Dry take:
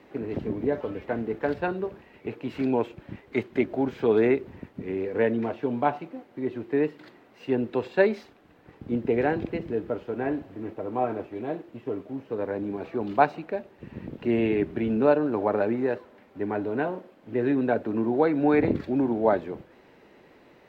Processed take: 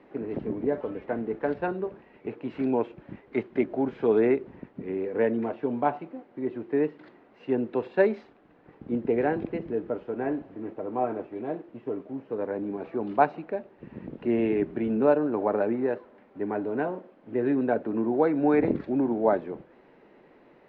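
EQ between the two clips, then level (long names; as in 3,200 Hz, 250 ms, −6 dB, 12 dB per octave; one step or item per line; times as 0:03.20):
high-frequency loss of the air 100 metres
parametric band 83 Hz −10.5 dB 0.96 octaves
high-shelf EQ 3,300 Hz −11.5 dB
0.0 dB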